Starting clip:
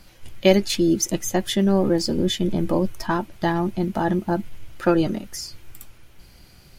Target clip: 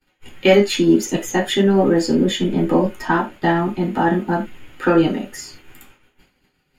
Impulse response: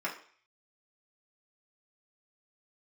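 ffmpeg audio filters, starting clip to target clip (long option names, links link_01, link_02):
-filter_complex "[0:a]agate=range=-33dB:threshold=-36dB:ratio=3:detection=peak,asplit=2[link_01][link_02];[link_02]aeval=exprs='0.891*sin(PI/2*1.58*val(0)/0.891)':channel_layout=same,volume=-4dB[link_03];[link_01][link_03]amix=inputs=2:normalize=0,bass=frequency=250:gain=4,treble=frequency=4000:gain=-1,asettb=1/sr,asplit=3[link_04][link_05][link_06];[link_04]atrim=end=3.844[link_07];[link_05]atrim=start=3.84:end=4.4,asetpts=PTS-STARTPTS,afade=type=in:duration=0.004:curve=qsin,afade=type=out:start_time=0.556:duration=0.004:curve=qsin,aeval=exprs='sgn(val(0))*max(abs(val(0))-0.00501,0)':channel_layout=same[link_08];[link_06]atrim=start=4.396[link_09];[link_07][link_08]acrossfade=duration=0.004:curve1=hsin:curve2=qsin[link_10];[link_10][link_09]acrossfade=duration=0.004:curve1=qsin:curve2=hsin[link_11];[1:a]atrim=start_sample=2205,afade=type=out:start_time=0.18:duration=0.01,atrim=end_sample=8379,asetrate=57330,aresample=44100[link_12];[link_11][link_12]afir=irnorm=-1:irlink=0,volume=-4.5dB"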